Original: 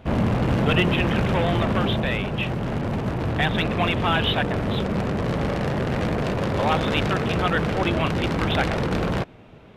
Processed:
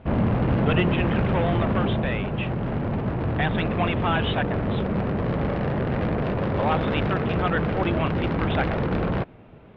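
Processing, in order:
high-frequency loss of the air 340 metres

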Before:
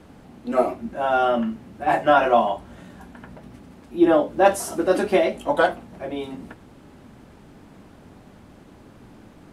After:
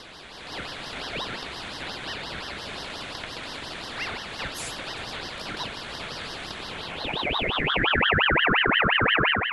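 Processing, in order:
compressor on every frequency bin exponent 0.2
Chebyshev band-pass filter 210–9,000 Hz, order 5
high-shelf EQ 7,100 Hz +10 dB
leveller curve on the samples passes 1
band-pass filter sweep 2,700 Hz → 610 Hz, 0:06.52–0:08.50
downward compressor 12 to 1, threshold −23 dBFS, peak gain reduction 11 dB
noise reduction from a noise print of the clip's start 14 dB
automatic gain control gain up to 9 dB
ring modulator whose carrier an LFO sweeps 1,600 Hz, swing 55%, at 5.7 Hz

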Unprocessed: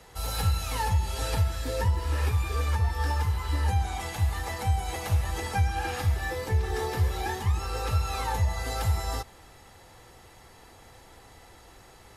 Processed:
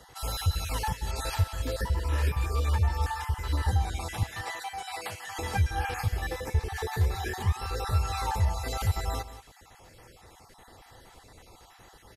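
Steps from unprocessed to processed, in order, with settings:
time-frequency cells dropped at random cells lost 28%
0:04.23–0:05.39: meter weighting curve A
single-tap delay 179 ms −14 dB

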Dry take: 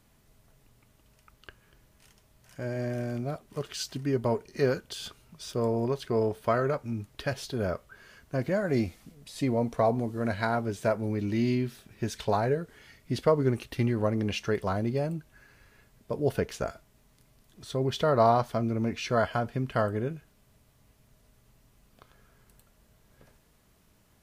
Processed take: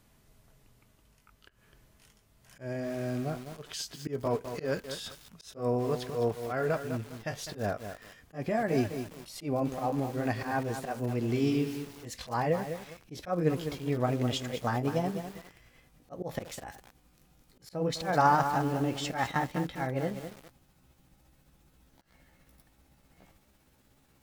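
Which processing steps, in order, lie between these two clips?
pitch glide at a constant tempo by +5 semitones starting unshifted
volume swells 141 ms
feedback echo at a low word length 204 ms, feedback 35%, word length 7 bits, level −8 dB

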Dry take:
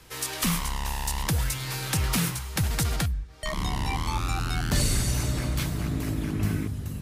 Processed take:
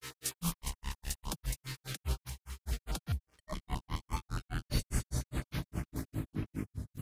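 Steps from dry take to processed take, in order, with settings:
dead-zone distortion −50.5 dBFS
granular cloud 140 ms, grains 4.9 per second, pitch spread up and down by 0 semitones
notch on a step sequencer 9.6 Hz 670–7,900 Hz
level −4 dB

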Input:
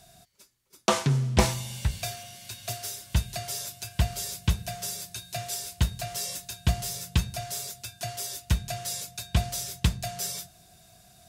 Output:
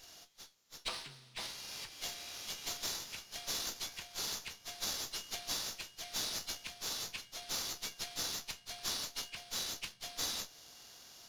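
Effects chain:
hearing-aid frequency compression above 1,700 Hz 1.5 to 1
downward compressor 2 to 1, threshold −43 dBFS, peak gain reduction 15.5 dB
first difference
tuned comb filter 71 Hz, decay 0.16 s, harmonics all, mix 60%
windowed peak hold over 3 samples
level +11.5 dB

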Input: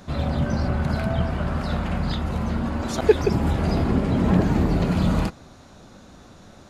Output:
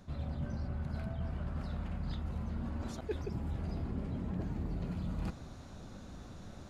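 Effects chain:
low-shelf EQ 180 Hz +9.5 dB
reversed playback
downward compressor 5 to 1, threshold −30 dBFS, peak gain reduction 19.5 dB
reversed playback
level −6.5 dB

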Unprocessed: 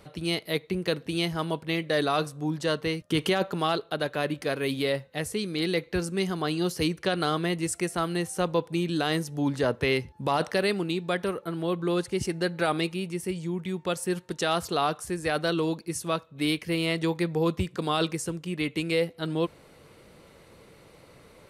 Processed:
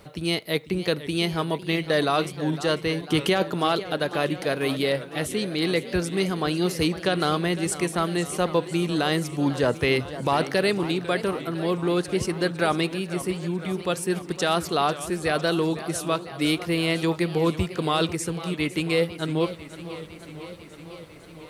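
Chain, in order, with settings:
bit reduction 12 bits
feedback echo with a swinging delay time 501 ms, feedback 72%, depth 172 cents, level −14.5 dB
level +3 dB

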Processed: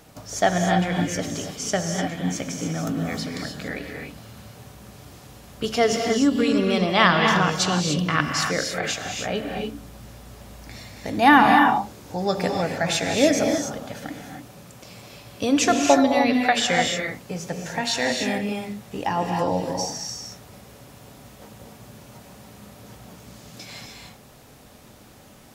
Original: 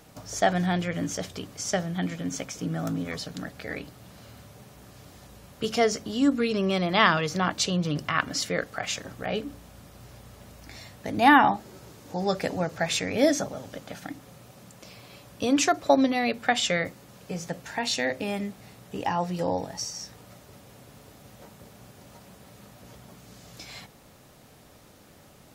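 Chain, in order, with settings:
0:05.64–0:06.54: surface crackle 41 per second −39 dBFS
reverb whose tail is shaped and stops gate 320 ms rising, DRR 2 dB
level +2.5 dB

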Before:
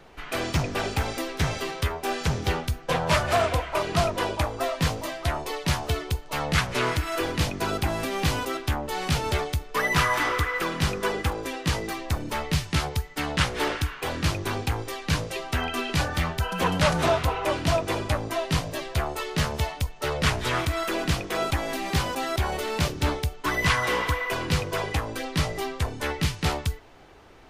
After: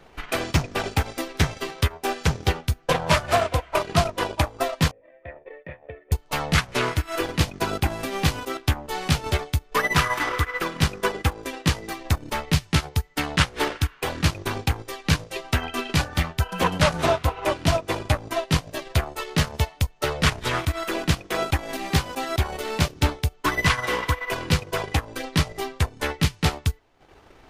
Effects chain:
0:04.91–0:06.12: formant resonators in series e
transient designer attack +6 dB, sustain −12 dB

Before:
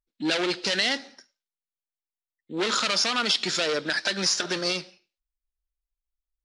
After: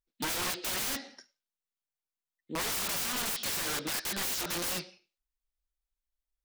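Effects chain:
wrap-around overflow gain 26 dB
level −2 dB

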